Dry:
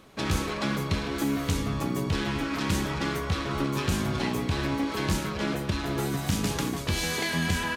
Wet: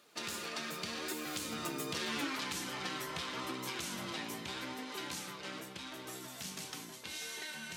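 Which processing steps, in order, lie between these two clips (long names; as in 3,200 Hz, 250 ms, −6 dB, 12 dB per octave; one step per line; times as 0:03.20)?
source passing by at 0:02.25, 29 m/s, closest 3.2 metres
Bessel high-pass filter 230 Hz, order 2
high-shelf EQ 2,000 Hz +9.5 dB
mains-hum notches 50/100/150/200/250/300 Hz
downward compressor 8 to 1, threshold −50 dBFS, peak gain reduction 22 dB
flanger 0.82 Hz, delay 1.6 ms, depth 5.7 ms, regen +64%
level +18 dB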